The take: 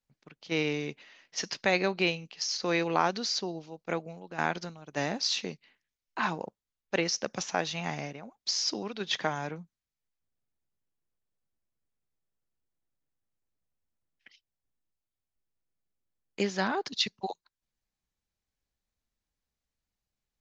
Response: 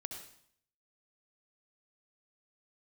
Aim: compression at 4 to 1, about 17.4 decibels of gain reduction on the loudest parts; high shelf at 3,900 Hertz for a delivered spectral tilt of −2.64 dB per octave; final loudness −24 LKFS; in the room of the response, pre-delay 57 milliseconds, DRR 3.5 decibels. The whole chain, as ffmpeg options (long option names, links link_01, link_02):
-filter_complex "[0:a]highshelf=frequency=3900:gain=6.5,acompressor=threshold=-42dB:ratio=4,asplit=2[link_01][link_02];[1:a]atrim=start_sample=2205,adelay=57[link_03];[link_02][link_03]afir=irnorm=-1:irlink=0,volume=-1.5dB[link_04];[link_01][link_04]amix=inputs=2:normalize=0,volume=18dB"